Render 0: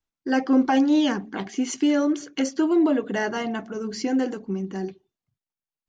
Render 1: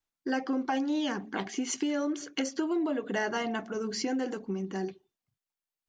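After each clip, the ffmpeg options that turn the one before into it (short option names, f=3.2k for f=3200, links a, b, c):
-af "acompressor=threshold=-25dB:ratio=5,lowshelf=f=270:g=-6.5"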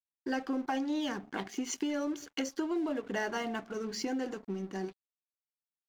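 -af "aeval=exprs='sgn(val(0))*max(abs(val(0))-0.00376,0)':c=same,volume=-2.5dB"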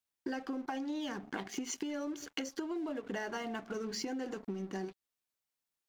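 -af "acompressor=threshold=-42dB:ratio=6,volume=6dB"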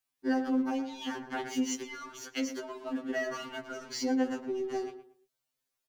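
-filter_complex "[0:a]asplit=2[a][b];[b]adelay=115,lowpass=f=1.8k:p=1,volume=-9.5dB,asplit=2[c][d];[d]adelay=115,lowpass=f=1.8k:p=1,volume=0.28,asplit=2[e][f];[f]adelay=115,lowpass=f=1.8k:p=1,volume=0.28[g];[a][c][e][g]amix=inputs=4:normalize=0,afftfilt=real='re*2.45*eq(mod(b,6),0)':imag='im*2.45*eq(mod(b,6),0)':win_size=2048:overlap=0.75,volume=6dB"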